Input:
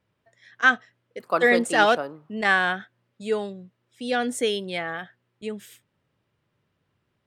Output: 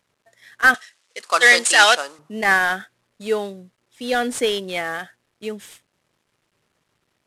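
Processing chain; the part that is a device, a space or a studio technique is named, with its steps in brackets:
early wireless headset (high-pass filter 250 Hz 6 dB per octave; variable-slope delta modulation 64 kbit/s)
0:00.74–0:02.19: meter weighting curve ITU-R 468
level +5 dB

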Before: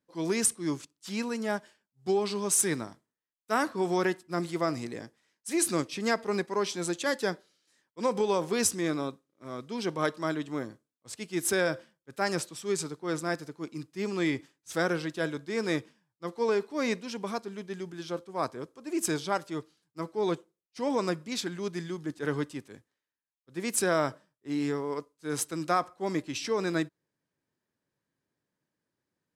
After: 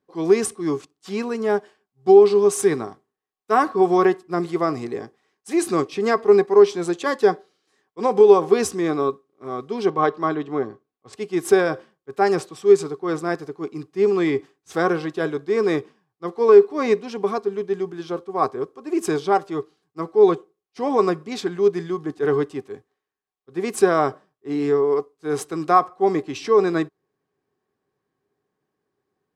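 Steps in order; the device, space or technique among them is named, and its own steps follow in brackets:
0:09.90–0:11.13: Bessel low-pass filter 4,200 Hz, order 2
inside a helmet (high-shelf EQ 5,100 Hz −10 dB; hollow resonant body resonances 410/760/1,100 Hz, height 15 dB, ringing for 70 ms)
level +4.5 dB

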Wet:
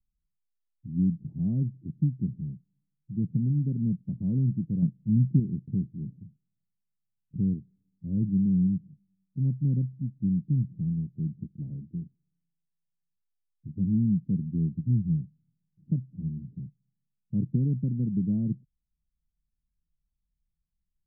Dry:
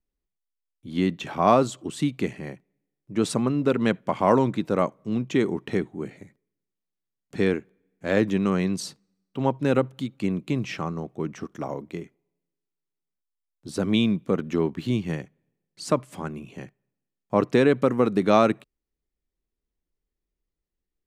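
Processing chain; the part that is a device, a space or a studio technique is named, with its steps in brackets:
the neighbour's flat through the wall (low-pass filter 180 Hz 24 dB per octave; parametric band 160 Hz +3 dB 0.75 octaves)
0:04.82–0:05.40: dynamic equaliser 150 Hz, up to +7 dB, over −42 dBFS, Q 0.7
level +3.5 dB

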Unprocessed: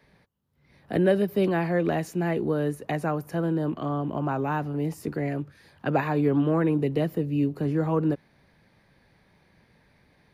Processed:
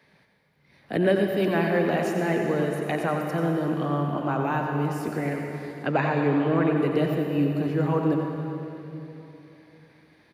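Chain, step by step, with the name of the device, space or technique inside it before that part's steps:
PA in a hall (high-pass filter 110 Hz; parametric band 2,600 Hz +4 dB 2.5 octaves; single-tap delay 90 ms −10 dB; convolution reverb RT60 3.2 s, pre-delay 81 ms, DRR 3 dB)
0:05.87–0:06.77: low-pass filter 7,300 Hz 12 dB per octave
level −1 dB

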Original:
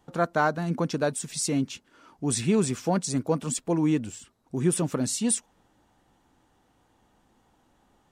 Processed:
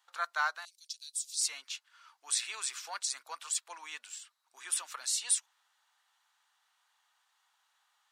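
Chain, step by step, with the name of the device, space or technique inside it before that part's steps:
headphones lying on a table (high-pass filter 1,100 Hz 24 dB per octave; parametric band 4,100 Hz +5 dB 0.56 octaves)
0:00.65–0:01.41: inverse Chebyshev band-stop filter 170–880 Hz, stop band 80 dB
level −2.5 dB

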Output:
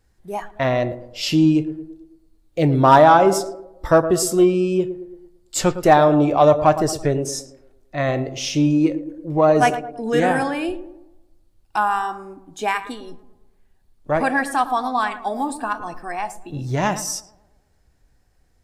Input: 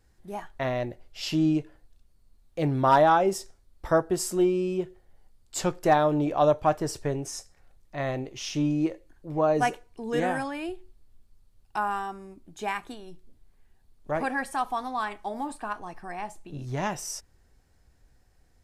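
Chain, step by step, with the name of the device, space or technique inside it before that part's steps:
0:15.23–0:16.76: high-shelf EQ 11,000 Hz +5.5 dB
tape delay 111 ms, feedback 60%, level −10 dB, low-pass 1,400 Hz
parallel distortion (in parallel at −12 dB: hard clipping −22 dBFS, distortion −9 dB)
on the sum: noise reduction from a noise print of the clip's start 8 dB
level +7 dB

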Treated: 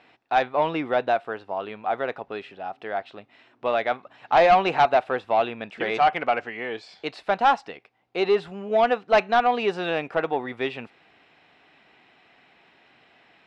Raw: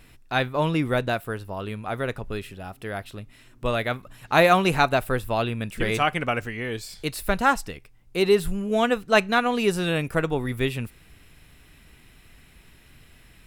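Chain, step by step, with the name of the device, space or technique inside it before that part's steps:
intercom (band-pass filter 320–4,000 Hz; parametric band 760 Hz +9.5 dB 0.55 octaves; soft clipping −10.5 dBFS, distortion −13 dB)
low-pass filter 5,300 Hz 12 dB per octave

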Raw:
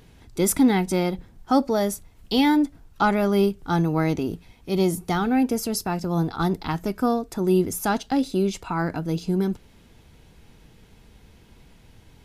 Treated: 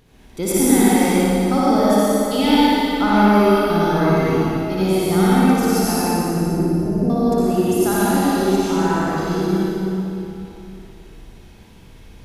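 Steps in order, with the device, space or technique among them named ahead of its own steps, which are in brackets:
0:05.99–0:07.10: Butterworth low-pass 610 Hz 48 dB per octave
tunnel (flutter between parallel walls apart 10 metres, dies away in 0.94 s; convolution reverb RT60 3.0 s, pre-delay 72 ms, DRR −8 dB)
level −3.5 dB

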